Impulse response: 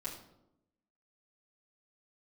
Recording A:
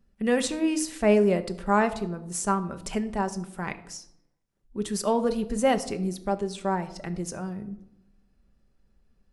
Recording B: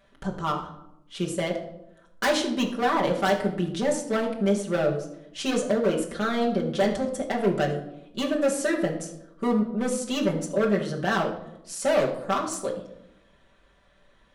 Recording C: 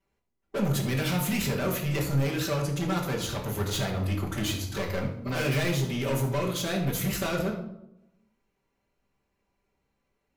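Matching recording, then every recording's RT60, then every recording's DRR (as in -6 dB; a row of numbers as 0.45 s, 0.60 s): C; 0.85 s, 0.85 s, 0.85 s; 8.0 dB, -1.5 dB, -7.5 dB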